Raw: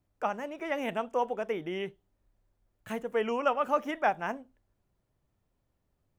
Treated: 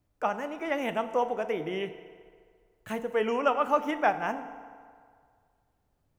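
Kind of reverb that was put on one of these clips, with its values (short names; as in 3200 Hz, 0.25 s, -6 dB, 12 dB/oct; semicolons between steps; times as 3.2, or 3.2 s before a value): FDN reverb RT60 2 s, low-frequency decay 0.8×, high-frequency decay 0.7×, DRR 10 dB; gain +2 dB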